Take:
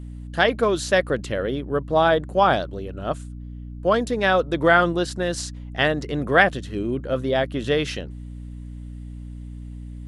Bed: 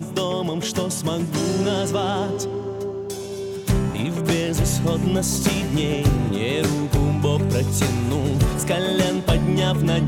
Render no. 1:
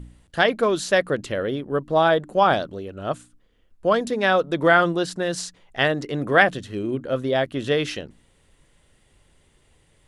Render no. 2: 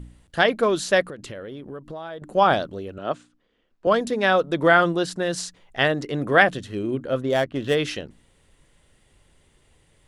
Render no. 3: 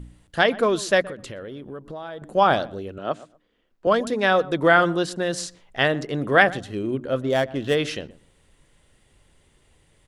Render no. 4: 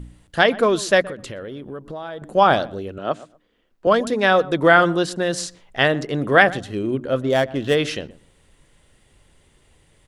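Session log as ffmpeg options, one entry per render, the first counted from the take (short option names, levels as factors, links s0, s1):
-af "bandreject=f=60:t=h:w=4,bandreject=f=120:t=h:w=4,bandreject=f=180:t=h:w=4,bandreject=f=240:t=h:w=4,bandreject=f=300:t=h:w=4"
-filter_complex "[0:a]asettb=1/sr,asplit=3[s0][s1][s2];[s0]atrim=end=1.054[s3];[s1]atrim=start=1.05:end=2.22,asetpts=PTS-STARTPTS,afade=t=in:d=0.004:c=qsin,afade=t=out:st=1.166:d=0.004:c=qsin,acompressor=threshold=0.0224:ratio=6:attack=3.2:release=140:knee=1:detection=peak[s4];[s2]atrim=start=2.216[s5];[s3][s4]acrossfade=d=0.004:c1=hsin:c2=qsin[s6];[s6][s5]acrossfade=d=0.004:c1=qsin:c2=hsin,asettb=1/sr,asplit=3[s7][s8][s9];[s7]atrim=end=2.984[s10];[s8]atrim=start=2.98:end=3.87,asetpts=PTS-STARTPTS,afade=t=in:d=0.004:c=qsin,afade=t=out:st=0.886:d=0.004:c=qsin,acrossover=split=170 6300:gain=0.2 1 0.0631[s11][s12][s13];[s11][s12][s13]amix=inputs=3:normalize=0[s14];[s9]atrim=start=3.866[s15];[s10][s14]acrossfade=d=0.004:c1=hsin:c2=qsin[s16];[s16][s15]acrossfade=d=0.004:c1=qsin:c2=hsin,asplit=3[s17][s18][s19];[s17]afade=t=out:st=7.2:d=0.02[s20];[s18]adynamicsmooth=sensitivity=4.5:basefreq=2100,afade=t=in:st=7.2:d=0.02,afade=t=out:st=7.74:d=0.02[s21];[s19]afade=t=in:st=7.74:d=0.02[s22];[s20][s21][s22]amix=inputs=3:normalize=0"
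-filter_complex "[0:a]asplit=2[s0][s1];[s1]adelay=123,lowpass=f=1300:p=1,volume=0.126,asplit=2[s2][s3];[s3]adelay=123,lowpass=f=1300:p=1,volume=0.21[s4];[s0][s2][s4]amix=inputs=3:normalize=0"
-af "volume=1.41,alimiter=limit=0.891:level=0:latency=1"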